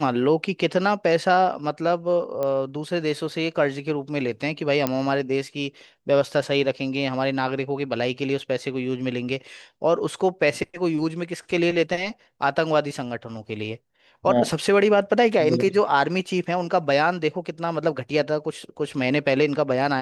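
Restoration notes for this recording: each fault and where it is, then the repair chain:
2.43 pop -15 dBFS
4.87 pop -8 dBFS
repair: de-click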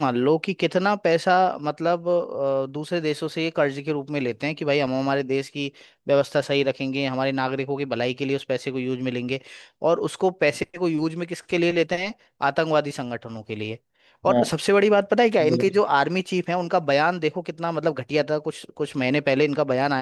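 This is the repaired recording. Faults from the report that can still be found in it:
none

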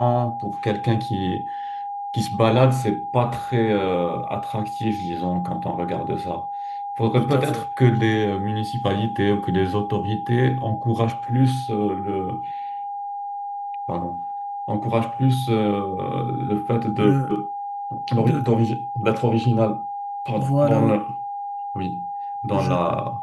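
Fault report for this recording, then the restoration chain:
tone 810 Hz -27 dBFS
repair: notch 810 Hz, Q 30

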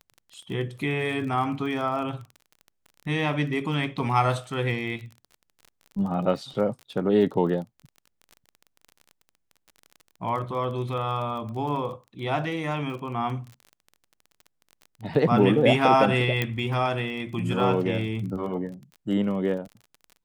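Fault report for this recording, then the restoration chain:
crackle 29/s -35 dBFS
16.42 pop -11 dBFS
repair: de-click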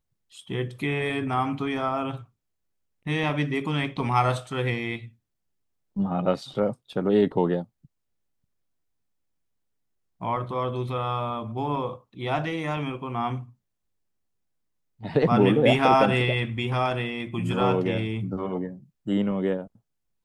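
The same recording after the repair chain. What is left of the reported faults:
none

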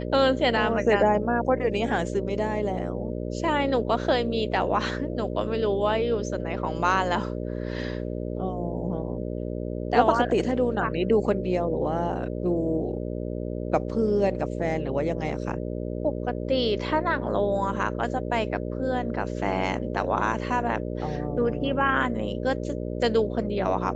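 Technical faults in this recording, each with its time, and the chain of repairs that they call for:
buzz 60 Hz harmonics 10 -31 dBFS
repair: de-hum 60 Hz, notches 10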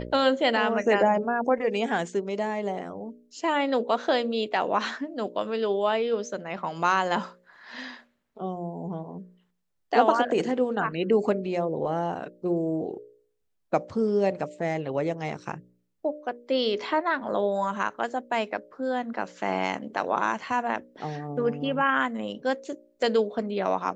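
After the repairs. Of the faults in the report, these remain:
none

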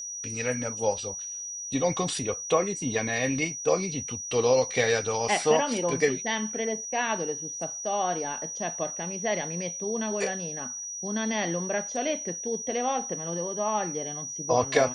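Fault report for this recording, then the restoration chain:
tone 5800 Hz -34 dBFS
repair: notch 5800 Hz, Q 30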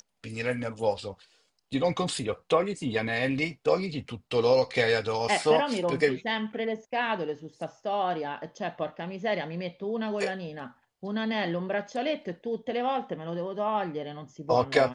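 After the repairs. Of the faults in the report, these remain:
none

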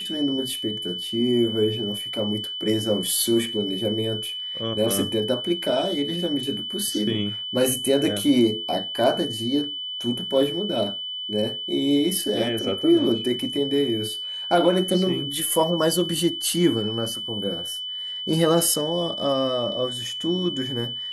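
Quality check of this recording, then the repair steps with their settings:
tone 3000 Hz -29 dBFS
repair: notch 3000 Hz, Q 30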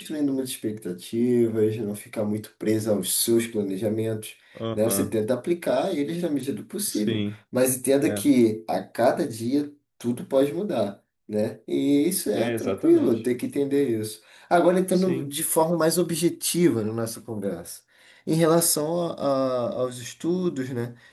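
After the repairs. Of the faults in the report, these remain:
none

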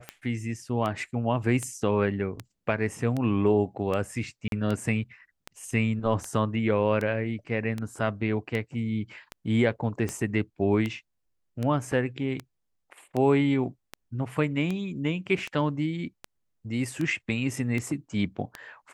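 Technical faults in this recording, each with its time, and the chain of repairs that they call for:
tick 78 rpm -18 dBFS
4.48–4.52 gap 42 ms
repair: de-click; interpolate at 4.48, 42 ms

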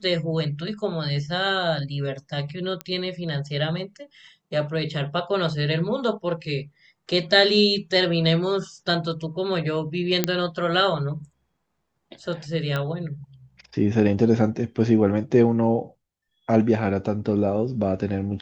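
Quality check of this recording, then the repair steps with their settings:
2.81 pop -15 dBFS
10.24 pop -4 dBFS
12.76 pop -14 dBFS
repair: de-click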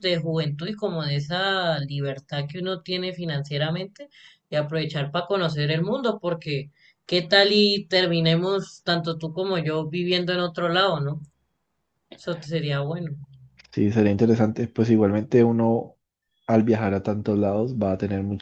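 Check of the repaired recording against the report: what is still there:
none

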